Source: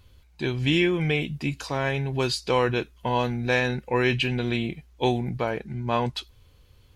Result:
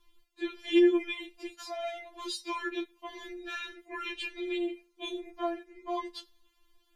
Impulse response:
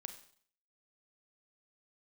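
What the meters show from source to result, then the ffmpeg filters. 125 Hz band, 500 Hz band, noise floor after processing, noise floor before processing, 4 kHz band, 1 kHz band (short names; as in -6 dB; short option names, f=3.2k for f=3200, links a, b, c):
under -40 dB, -7.0 dB, -70 dBFS, -57 dBFS, -9.0 dB, -10.5 dB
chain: -filter_complex "[0:a]asplit=2[a][b];[1:a]atrim=start_sample=2205[c];[b][c]afir=irnorm=-1:irlink=0,volume=-11dB[d];[a][d]amix=inputs=2:normalize=0,afftfilt=real='re*4*eq(mod(b,16),0)':imag='im*4*eq(mod(b,16),0)':win_size=2048:overlap=0.75,volume=-6.5dB"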